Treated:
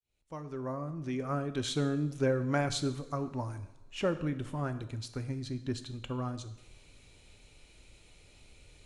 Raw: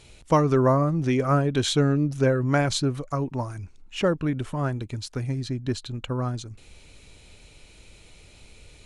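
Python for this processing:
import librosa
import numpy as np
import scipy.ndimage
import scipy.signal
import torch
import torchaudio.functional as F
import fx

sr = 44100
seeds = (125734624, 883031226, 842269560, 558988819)

y = fx.fade_in_head(x, sr, length_s=2.15)
y = fx.rev_double_slope(y, sr, seeds[0], early_s=0.81, late_s=3.2, knee_db=-24, drr_db=9.5)
y = y * 10.0 ** (-8.0 / 20.0)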